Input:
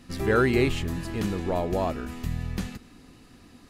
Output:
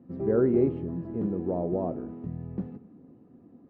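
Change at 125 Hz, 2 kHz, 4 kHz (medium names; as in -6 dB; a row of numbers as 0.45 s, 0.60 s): -4.5 dB, under -20 dB, under -30 dB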